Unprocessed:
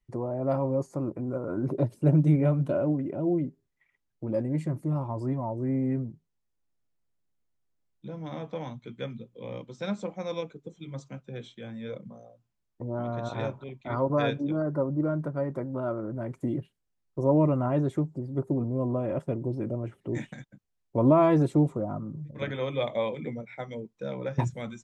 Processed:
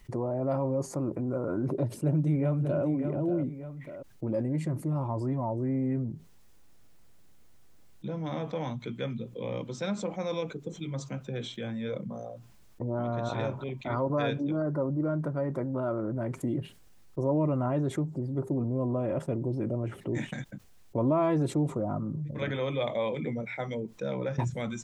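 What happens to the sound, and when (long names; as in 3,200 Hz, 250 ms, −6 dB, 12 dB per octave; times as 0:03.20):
0:01.98–0:02.84: delay throw 590 ms, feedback 15%, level −10.5 dB
whole clip: envelope flattener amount 50%; level −6.5 dB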